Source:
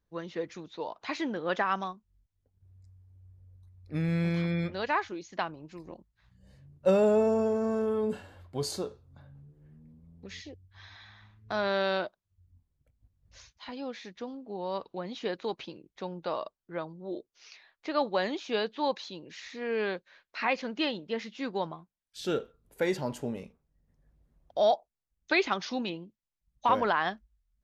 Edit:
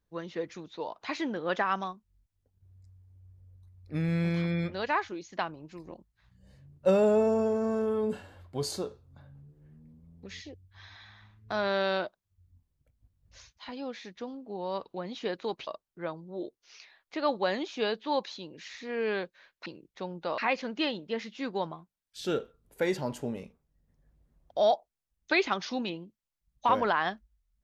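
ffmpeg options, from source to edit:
ffmpeg -i in.wav -filter_complex "[0:a]asplit=4[link_01][link_02][link_03][link_04];[link_01]atrim=end=15.672[link_05];[link_02]atrim=start=16.388:end=20.382[link_06];[link_03]atrim=start=15.668:end=16.392[link_07];[link_04]atrim=start=20.378[link_08];[link_05][link_06]acrossfade=duration=0.004:curve1=hsin:curve2=hsin[link_09];[link_09][link_07]acrossfade=duration=0.004:curve1=hsin:curve2=hsin[link_10];[link_10][link_08]acrossfade=duration=0.004:curve1=hsin:curve2=hsin" out.wav

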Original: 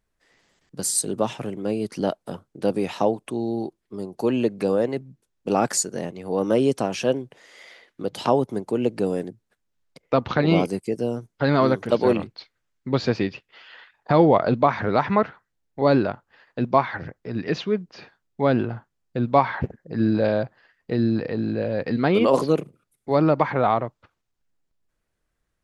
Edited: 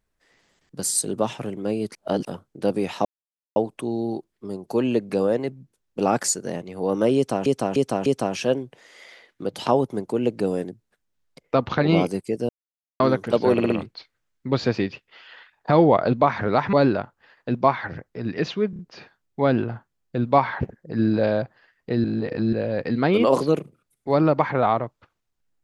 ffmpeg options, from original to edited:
ffmpeg -i in.wav -filter_complex "[0:a]asplit=18[link_01][link_02][link_03][link_04][link_05][link_06][link_07][link_08][link_09][link_10][link_11][link_12][link_13][link_14][link_15][link_16][link_17][link_18];[link_01]atrim=end=1.952[link_19];[link_02]atrim=start=1.948:end=2.252,asetpts=PTS-STARTPTS,areverse[link_20];[link_03]atrim=start=2.248:end=3.05,asetpts=PTS-STARTPTS,afade=type=out:start_time=0.798:duration=0.004:curve=hsin,apad=pad_dur=0.51[link_21];[link_04]atrim=start=3.05:end=6.952,asetpts=PTS-STARTPTS,afade=type=in:duration=0.004:curve=hsin[link_22];[link_05]atrim=start=6.648:end=6.952[link_23];[link_06]atrim=start=6.648:end=6.952[link_24];[link_07]atrim=start=6.648:end=11.08,asetpts=PTS-STARTPTS,afade=type=out:start_time=4.428:duration=0.004:curve=hsin[link_25];[link_08]atrim=start=11.08:end=11.59,asetpts=PTS-STARTPTS,volume=0[link_26];[link_09]atrim=start=11.59:end=12.172,asetpts=PTS-STARTPTS,afade=type=in:duration=0.004:curve=hsin[link_27];[link_10]atrim=start=12.108:end=12.172[link_28];[link_11]atrim=start=12.108:end=12.172[link_29];[link_12]atrim=start=12.108:end=15.142[link_30];[link_13]atrim=start=15.828:end=17.832[link_31];[link_14]atrim=start=17.798:end=17.832[link_32];[link_15]atrim=start=17.798:end=17.832[link_33];[link_16]atrim=start=17.798:end=21.052[link_34];[link_17]atrim=start=21.048:end=21.542,asetpts=PTS-STARTPTS,areverse[link_35];[link_18]atrim=start=21.538[link_36];[link_19][link_20]acrossfade=duration=0.004:curve1=hsin:curve2=hsin[link_37];[link_21][link_22]concat=n=2:v=0:a=1[link_38];[link_37][link_38]acrossfade=duration=0.004:curve1=hsin:curve2=hsin[link_39];[link_39][link_23]acrossfade=duration=0.004:curve1=hsin:curve2=hsin[link_40];[link_40][link_24]acrossfade=duration=0.004:curve1=hsin:curve2=hsin[link_41];[link_25][link_26][link_27]concat=n=3:v=0:a=1[link_42];[link_41][link_42]acrossfade=duration=0.004:curve1=hsin:curve2=hsin[link_43];[link_43][link_28]acrossfade=duration=0.004:curve1=hsin:curve2=hsin[link_44];[link_44][link_29]acrossfade=duration=0.004:curve1=hsin:curve2=hsin[link_45];[link_45][link_30]acrossfade=duration=0.004:curve1=hsin:curve2=hsin[link_46];[link_46][link_31]acrossfade=duration=0.004:curve1=hsin:curve2=hsin[link_47];[link_47][link_32]acrossfade=duration=0.004:curve1=hsin:curve2=hsin[link_48];[link_48][link_33]acrossfade=duration=0.004:curve1=hsin:curve2=hsin[link_49];[link_49][link_34]acrossfade=duration=0.004:curve1=hsin:curve2=hsin[link_50];[link_50][link_35]acrossfade=duration=0.004:curve1=hsin:curve2=hsin[link_51];[link_51][link_36]acrossfade=duration=0.004:curve1=hsin:curve2=hsin" out.wav

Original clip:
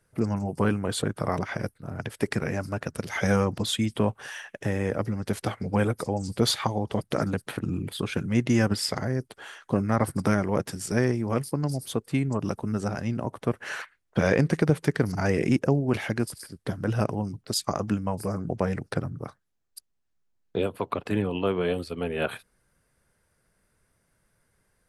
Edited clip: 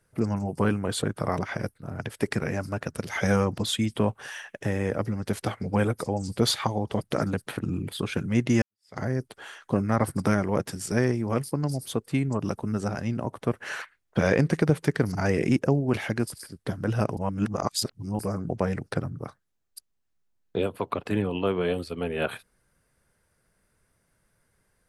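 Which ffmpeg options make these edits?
ffmpeg -i in.wav -filter_complex "[0:a]asplit=4[link_01][link_02][link_03][link_04];[link_01]atrim=end=8.62,asetpts=PTS-STARTPTS,afade=type=out:start_time=8.616:duration=0.004:curve=hsin[link_05];[link_02]atrim=start=8.62:end=17.172,asetpts=PTS-STARTPTS,afade=type=in:duration=0.37:curve=exp[link_06];[link_03]atrim=start=17.168:end=18.192,asetpts=PTS-STARTPTS,areverse[link_07];[link_04]atrim=start=18.188[link_08];[link_05][link_06]concat=n=2:v=0:a=1[link_09];[link_09][link_07]acrossfade=duration=0.004:curve1=hsin:curve2=hsin[link_10];[link_10][link_08]acrossfade=duration=0.004:curve1=hsin:curve2=hsin" out.wav

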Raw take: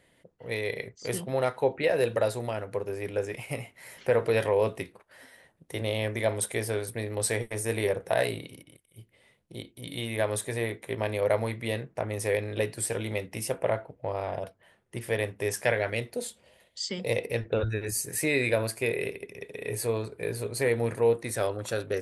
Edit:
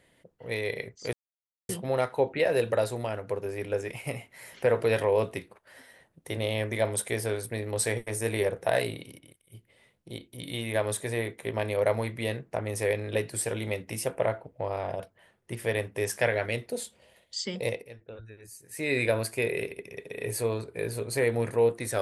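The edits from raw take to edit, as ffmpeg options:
ffmpeg -i in.wav -filter_complex "[0:a]asplit=4[link_01][link_02][link_03][link_04];[link_01]atrim=end=1.13,asetpts=PTS-STARTPTS,afade=type=out:start_time=1.126:duration=0.004:curve=hsin,apad=pad_dur=0.56[link_05];[link_02]atrim=start=1.13:end=17.32,asetpts=PTS-STARTPTS,afade=type=in:duration=0.004:curve=hsin,afade=type=out:start_time=15.92:duration=0.27:silence=0.141254[link_06];[link_03]atrim=start=17.32:end=18.14,asetpts=PTS-STARTPTS,volume=-17dB[link_07];[link_04]atrim=start=18.14,asetpts=PTS-STARTPTS,afade=type=in:duration=0.27:silence=0.141254[link_08];[link_05][link_06][link_07][link_08]concat=n=4:v=0:a=1" out.wav

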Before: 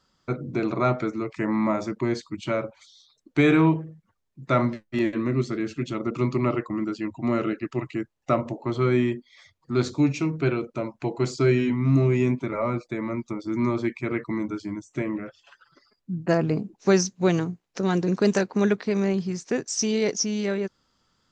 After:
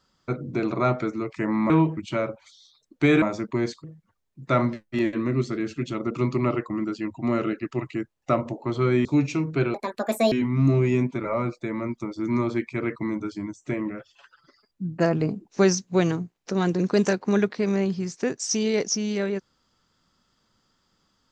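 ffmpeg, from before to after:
ffmpeg -i in.wav -filter_complex "[0:a]asplit=8[link_01][link_02][link_03][link_04][link_05][link_06][link_07][link_08];[link_01]atrim=end=1.702[link_09];[link_02]atrim=start=3.568:end=3.842[link_10];[link_03]atrim=start=2.318:end=3.572[link_11];[link_04]atrim=start=1.698:end=2.322[link_12];[link_05]atrim=start=3.838:end=9.052[link_13];[link_06]atrim=start=9.908:end=10.604[link_14];[link_07]atrim=start=10.6:end=11.6,asetpts=PTS-STARTPTS,asetrate=76293,aresample=44100,atrim=end_sample=25491,asetpts=PTS-STARTPTS[link_15];[link_08]atrim=start=11.596[link_16];[link_09][link_10]acrossfade=duration=0.004:curve1=hsin:curve2=hsin[link_17];[link_17][link_11]acrossfade=duration=0.004:curve1=hsin:curve2=hsin[link_18];[link_18][link_12]acrossfade=duration=0.004:curve1=hsin:curve2=hsin[link_19];[link_19][link_13]acrossfade=duration=0.004:curve1=hsin:curve2=hsin[link_20];[link_20][link_14]acrossfade=duration=0.004:curve1=hsin:curve2=hsin[link_21];[link_21][link_15]acrossfade=duration=0.004:curve1=hsin:curve2=hsin[link_22];[link_22][link_16]acrossfade=duration=0.004:curve1=hsin:curve2=hsin" out.wav

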